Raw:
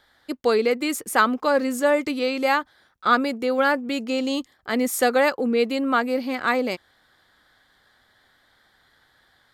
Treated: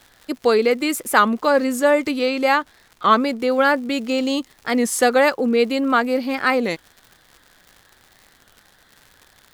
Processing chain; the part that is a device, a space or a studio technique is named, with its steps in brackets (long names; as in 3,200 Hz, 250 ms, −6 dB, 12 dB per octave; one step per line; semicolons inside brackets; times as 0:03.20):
warped LP (wow of a warped record 33 1/3 rpm, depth 160 cents; surface crackle 130 per second −38 dBFS; pink noise bed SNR 41 dB)
0:02.25–0:03.40: high-shelf EQ 9,400 Hz −4.5 dB
level +3.5 dB